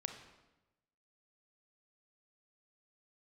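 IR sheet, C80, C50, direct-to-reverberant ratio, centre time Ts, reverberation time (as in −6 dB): 10.0 dB, 7.5 dB, 5.5 dB, 21 ms, 1.0 s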